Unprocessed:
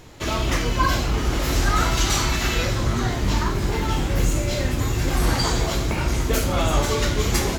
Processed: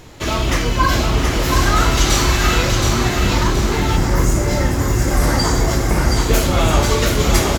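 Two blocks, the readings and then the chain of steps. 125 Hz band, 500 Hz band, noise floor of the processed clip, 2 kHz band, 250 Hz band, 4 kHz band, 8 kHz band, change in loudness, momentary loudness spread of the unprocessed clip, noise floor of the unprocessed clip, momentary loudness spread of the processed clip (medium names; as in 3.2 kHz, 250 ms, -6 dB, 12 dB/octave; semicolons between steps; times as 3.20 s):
+5.5 dB, +6.0 dB, -20 dBFS, +6.0 dB, +6.0 dB, +5.5 dB, +6.0 dB, +5.5 dB, 3 LU, -25 dBFS, 3 LU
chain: feedback delay 723 ms, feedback 42%, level -4.5 dB; time-frequency box 3.97–6.17 s, 2.2–4.6 kHz -7 dB; trim +4.5 dB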